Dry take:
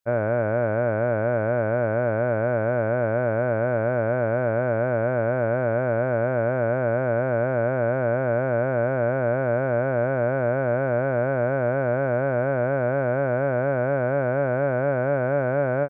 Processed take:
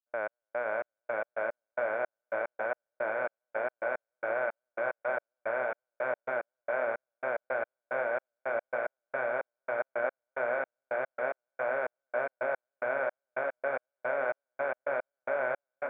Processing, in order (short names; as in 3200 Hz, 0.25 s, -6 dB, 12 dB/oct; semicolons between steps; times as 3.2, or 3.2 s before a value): limiter -18.5 dBFS, peak gain reduction 6.5 dB; HPF 920 Hz 12 dB/oct; bell 1300 Hz -2.5 dB; diffused feedback echo 0.598 s, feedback 60%, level -6 dB; step gate ".x..xx..x" 110 bpm -60 dB; gain +4.5 dB